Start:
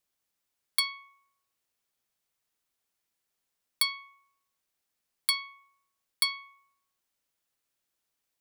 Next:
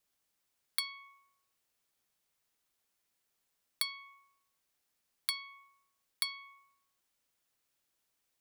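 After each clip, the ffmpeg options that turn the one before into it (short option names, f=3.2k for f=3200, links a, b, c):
-filter_complex "[0:a]acrossover=split=2300|6200[a][b][c];[a]acompressor=threshold=-48dB:ratio=4[d];[b]acompressor=threshold=-39dB:ratio=4[e];[c]acompressor=threshold=-37dB:ratio=4[f];[d][e][f]amix=inputs=3:normalize=0,volume=1.5dB"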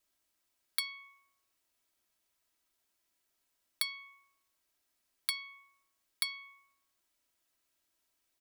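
-af "aecho=1:1:3.1:0.47"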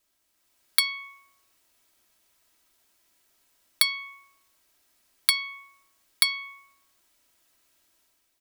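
-af "dynaudnorm=f=100:g=9:m=6.5dB,volume=6dB"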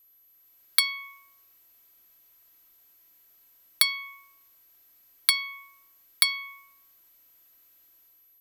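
-af "aeval=exprs='val(0)+0.00126*sin(2*PI*12000*n/s)':c=same"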